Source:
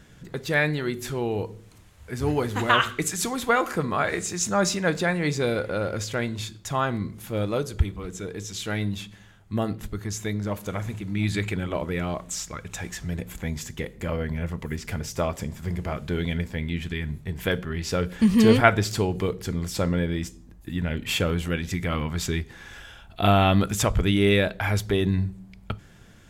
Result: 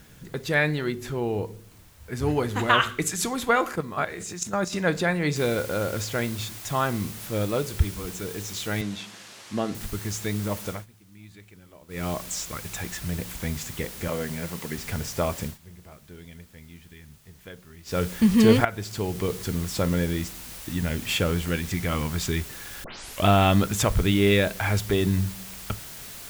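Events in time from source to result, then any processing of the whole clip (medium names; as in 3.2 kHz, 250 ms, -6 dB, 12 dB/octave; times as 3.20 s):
0.92–2.12 s: treble shelf 3 kHz -7.5 dB
3.69–4.73 s: level held to a coarse grid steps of 12 dB
5.36 s: noise floor step -58 dB -41 dB
8.81–9.75 s: band-pass 180–6400 Hz
10.67–12.07 s: dip -22.5 dB, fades 0.19 s
14.08–14.78 s: high-pass 160 Hz
15.45–17.98 s: dip -18 dB, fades 0.13 s
18.65–19.36 s: fade in linear, from -16.5 dB
22.84 s: tape start 0.42 s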